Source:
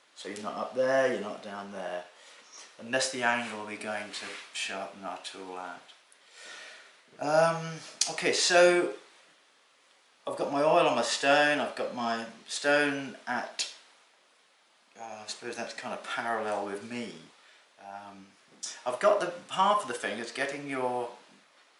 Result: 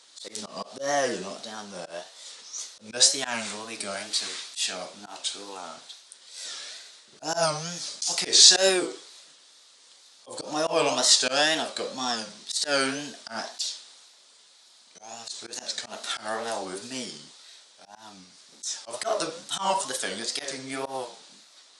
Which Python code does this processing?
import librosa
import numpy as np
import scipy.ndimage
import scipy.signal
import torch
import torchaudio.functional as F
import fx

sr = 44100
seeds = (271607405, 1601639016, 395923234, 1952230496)

y = fx.auto_swell(x, sr, attack_ms=107.0)
y = fx.wow_flutter(y, sr, seeds[0], rate_hz=2.1, depth_cents=140.0)
y = fx.band_shelf(y, sr, hz=5800.0, db=14.0, octaves=1.7)